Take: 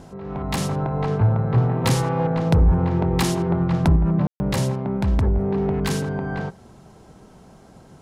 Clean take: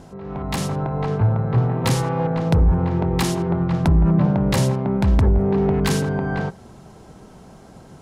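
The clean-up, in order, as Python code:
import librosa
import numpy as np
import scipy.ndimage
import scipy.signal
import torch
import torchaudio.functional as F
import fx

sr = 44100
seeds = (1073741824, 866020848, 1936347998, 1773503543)

y = fx.fix_ambience(x, sr, seeds[0], print_start_s=7.26, print_end_s=7.76, start_s=4.27, end_s=4.4)
y = fx.fix_level(y, sr, at_s=3.96, step_db=3.5)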